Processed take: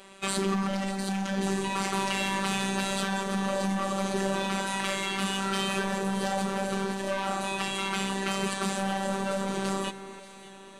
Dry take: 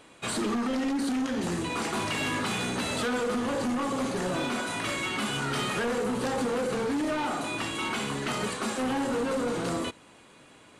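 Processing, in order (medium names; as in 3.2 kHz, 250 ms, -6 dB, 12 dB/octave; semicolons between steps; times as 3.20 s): compression 2:1, threshold -31 dBFS, peak gain reduction 3 dB; robot voice 194 Hz; on a send: echo whose repeats swap between lows and highs 292 ms, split 2 kHz, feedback 68%, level -12.5 dB; on the sum: trim +5.5 dB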